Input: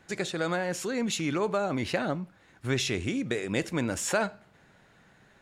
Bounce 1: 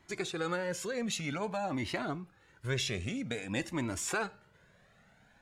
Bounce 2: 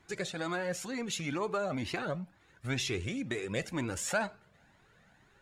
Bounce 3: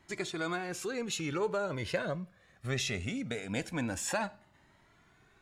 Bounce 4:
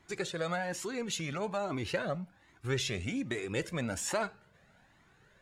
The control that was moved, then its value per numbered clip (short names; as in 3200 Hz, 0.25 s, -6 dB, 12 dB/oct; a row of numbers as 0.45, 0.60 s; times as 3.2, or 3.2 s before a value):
cascading flanger, rate: 0.52, 2.1, 0.21, 1.2 Hz